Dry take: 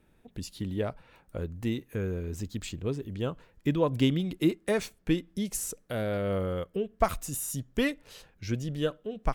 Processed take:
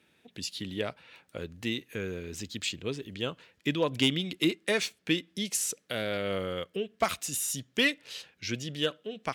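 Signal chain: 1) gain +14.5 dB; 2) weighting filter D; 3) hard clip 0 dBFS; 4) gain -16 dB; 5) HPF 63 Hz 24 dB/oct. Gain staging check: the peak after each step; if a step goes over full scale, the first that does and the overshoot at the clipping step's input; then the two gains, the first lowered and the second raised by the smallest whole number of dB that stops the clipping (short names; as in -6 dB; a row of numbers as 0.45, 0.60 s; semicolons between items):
+5.0, +7.0, 0.0, -16.0, -12.5 dBFS; step 1, 7.0 dB; step 1 +7.5 dB, step 4 -9 dB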